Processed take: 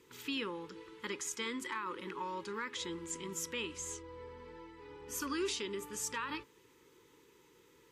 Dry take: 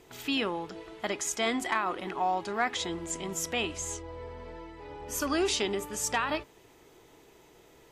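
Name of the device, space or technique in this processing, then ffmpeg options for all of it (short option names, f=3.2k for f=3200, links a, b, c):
PA system with an anti-feedback notch: -af "highpass=f=110:p=1,asuperstop=centerf=690:order=12:qfactor=2.2,alimiter=limit=-21.5dB:level=0:latency=1:release=263,volume=-6dB"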